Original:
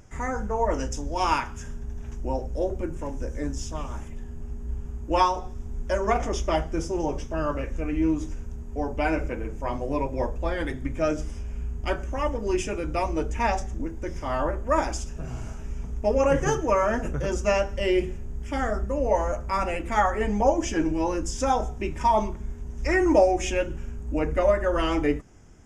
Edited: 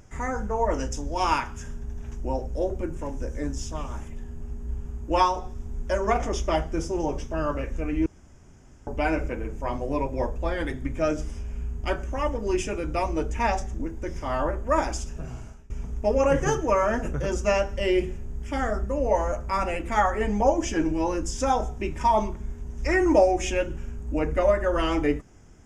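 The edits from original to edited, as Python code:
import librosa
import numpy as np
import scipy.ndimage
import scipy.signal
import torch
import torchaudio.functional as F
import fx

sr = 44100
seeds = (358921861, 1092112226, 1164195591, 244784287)

y = fx.edit(x, sr, fx.room_tone_fill(start_s=8.06, length_s=0.81),
    fx.fade_out_to(start_s=15.17, length_s=0.53, floor_db=-23.5), tone=tone)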